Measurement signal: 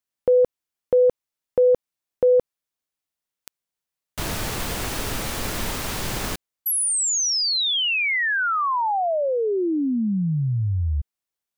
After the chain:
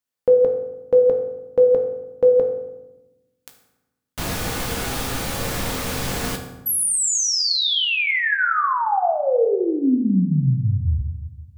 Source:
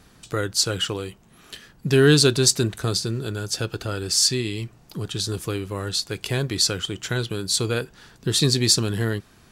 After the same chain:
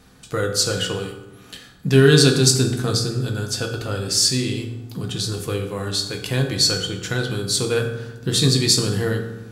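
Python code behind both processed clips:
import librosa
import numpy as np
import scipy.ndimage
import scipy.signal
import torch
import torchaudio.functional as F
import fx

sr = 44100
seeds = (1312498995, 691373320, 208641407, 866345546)

y = fx.doubler(x, sr, ms=15.0, db=-12.5)
y = fx.rev_fdn(y, sr, rt60_s=1.0, lf_ratio=1.6, hf_ratio=0.65, size_ms=12.0, drr_db=2.5)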